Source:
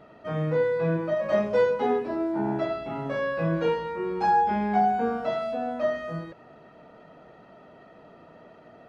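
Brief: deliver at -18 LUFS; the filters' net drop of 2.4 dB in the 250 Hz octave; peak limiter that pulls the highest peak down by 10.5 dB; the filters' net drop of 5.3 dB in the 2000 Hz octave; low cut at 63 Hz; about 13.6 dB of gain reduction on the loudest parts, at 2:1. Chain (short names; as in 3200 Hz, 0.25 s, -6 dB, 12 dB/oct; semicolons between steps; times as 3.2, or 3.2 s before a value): HPF 63 Hz; bell 250 Hz -3.5 dB; bell 2000 Hz -7 dB; compressor 2:1, threshold -45 dBFS; gain +26.5 dB; limiter -9.5 dBFS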